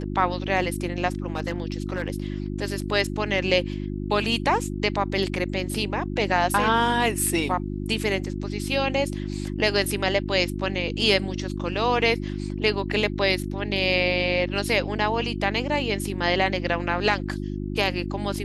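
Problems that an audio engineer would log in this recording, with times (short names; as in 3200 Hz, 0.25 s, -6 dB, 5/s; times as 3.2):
hum 50 Hz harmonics 7 -30 dBFS
1.26–2.08 clipped -20.5 dBFS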